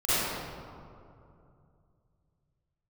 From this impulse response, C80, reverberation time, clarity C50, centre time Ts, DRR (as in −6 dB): −4.5 dB, 2.6 s, −9.5 dB, 184 ms, −16.0 dB